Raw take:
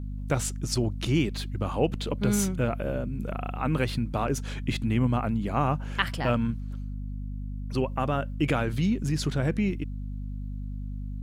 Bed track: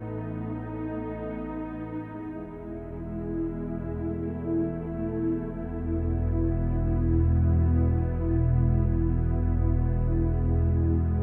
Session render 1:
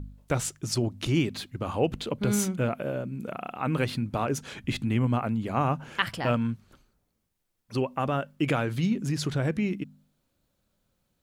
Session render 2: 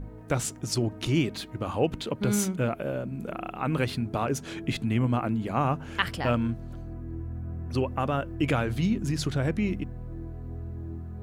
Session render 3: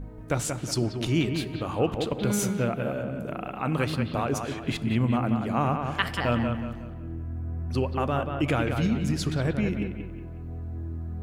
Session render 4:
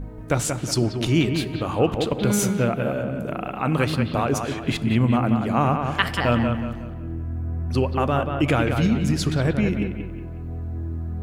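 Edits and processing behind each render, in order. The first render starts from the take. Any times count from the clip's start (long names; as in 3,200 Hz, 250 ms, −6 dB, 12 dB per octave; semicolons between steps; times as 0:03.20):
hum removal 50 Hz, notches 5
mix in bed track −13 dB
bucket-brigade delay 183 ms, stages 4,096, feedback 37%, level −6 dB; dense smooth reverb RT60 1.3 s, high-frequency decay 0.6×, DRR 16 dB
level +5 dB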